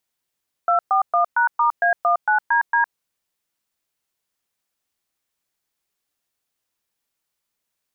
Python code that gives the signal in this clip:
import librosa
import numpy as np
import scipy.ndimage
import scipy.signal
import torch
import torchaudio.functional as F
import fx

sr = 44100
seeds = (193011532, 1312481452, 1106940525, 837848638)

y = fx.dtmf(sr, digits='241#*A19DD', tone_ms=110, gap_ms=118, level_db=-17.0)